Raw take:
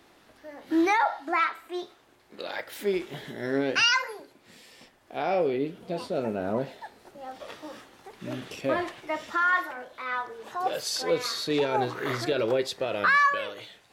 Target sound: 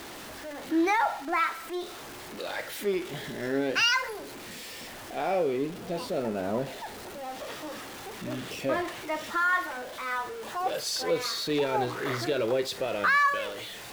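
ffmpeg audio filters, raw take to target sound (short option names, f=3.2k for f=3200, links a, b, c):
-af "aeval=exprs='val(0)+0.5*0.0178*sgn(val(0))':c=same,volume=-2.5dB"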